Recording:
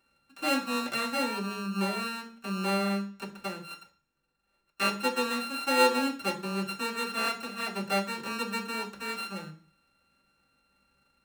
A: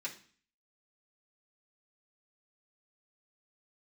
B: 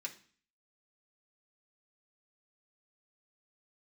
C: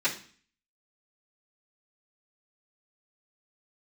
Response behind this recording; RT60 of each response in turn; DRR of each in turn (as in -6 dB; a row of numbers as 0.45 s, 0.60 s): A; 0.45 s, 0.45 s, 0.45 s; -6.5 dB, -1.5 dB, -13.5 dB